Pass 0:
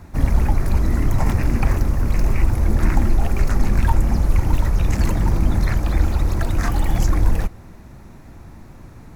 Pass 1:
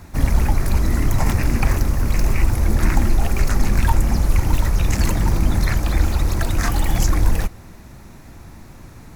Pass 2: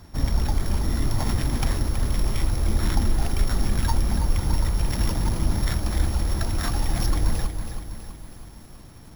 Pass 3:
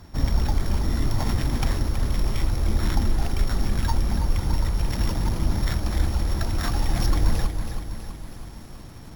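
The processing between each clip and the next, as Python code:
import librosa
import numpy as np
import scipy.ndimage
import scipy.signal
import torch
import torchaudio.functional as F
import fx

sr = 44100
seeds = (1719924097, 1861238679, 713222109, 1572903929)

y1 = fx.high_shelf(x, sr, hz=2100.0, db=7.5)
y2 = np.r_[np.sort(y1[:len(y1) // 8 * 8].reshape(-1, 8), axis=1).ravel(), y1[len(y1) // 8 * 8:]]
y2 = fx.echo_crushed(y2, sr, ms=325, feedback_pct=55, bits=7, wet_db=-8.5)
y2 = y2 * librosa.db_to_amplitude(-6.0)
y3 = fx.rider(y2, sr, range_db=4, speed_s=2.0)
y3 = np.repeat(scipy.signal.resample_poly(y3, 1, 2), 2)[:len(y3)]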